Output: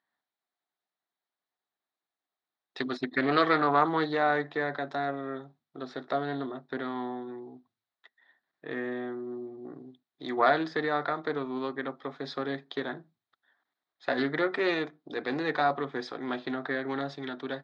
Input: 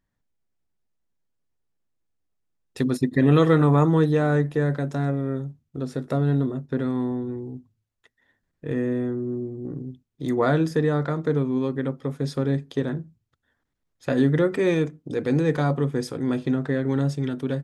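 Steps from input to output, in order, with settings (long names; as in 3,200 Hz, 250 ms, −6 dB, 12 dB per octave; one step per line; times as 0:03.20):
loudspeaker in its box 480–4,300 Hz, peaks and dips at 500 Hz −8 dB, 730 Hz +6 dB, 1,200 Hz +3 dB, 1,800 Hz +3 dB, 2,700 Hz −6 dB, 3,900 Hz +7 dB
highs frequency-modulated by the lows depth 0.14 ms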